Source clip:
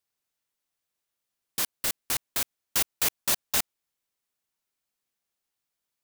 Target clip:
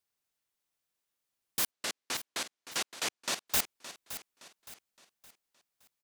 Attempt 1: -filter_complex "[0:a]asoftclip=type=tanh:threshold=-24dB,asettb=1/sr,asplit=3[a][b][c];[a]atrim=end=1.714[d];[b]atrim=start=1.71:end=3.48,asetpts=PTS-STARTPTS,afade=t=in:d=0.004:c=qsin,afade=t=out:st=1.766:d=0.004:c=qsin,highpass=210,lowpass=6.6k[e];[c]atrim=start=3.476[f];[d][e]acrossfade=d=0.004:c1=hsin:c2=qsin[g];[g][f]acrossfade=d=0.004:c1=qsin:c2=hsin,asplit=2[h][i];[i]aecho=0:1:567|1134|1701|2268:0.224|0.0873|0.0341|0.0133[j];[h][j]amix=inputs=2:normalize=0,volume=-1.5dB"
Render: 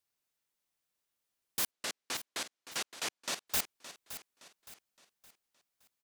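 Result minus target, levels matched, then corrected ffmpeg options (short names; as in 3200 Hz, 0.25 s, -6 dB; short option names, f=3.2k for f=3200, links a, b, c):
soft clip: distortion +8 dB
-filter_complex "[0:a]asoftclip=type=tanh:threshold=-16.5dB,asettb=1/sr,asplit=3[a][b][c];[a]atrim=end=1.714[d];[b]atrim=start=1.71:end=3.48,asetpts=PTS-STARTPTS,afade=t=in:d=0.004:c=qsin,afade=t=out:st=1.766:d=0.004:c=qsin,highpass=210,lowpass=6.6k[e];[c]atrim=start=3.476[f];[d][e]acrossfade=d=0.004:c1=hsin:c2=qsin[g];[g][f]acrossfade=d=0.004:c1=qsin:c2=hsin,asplit=2[h][i];[i]aecho=0:1:567|1134|1701|2268:0.224|0.0873|0.0341|0.0133[j];[h][j]amix=inputs=2:normalize=0,volume=-1.5dB"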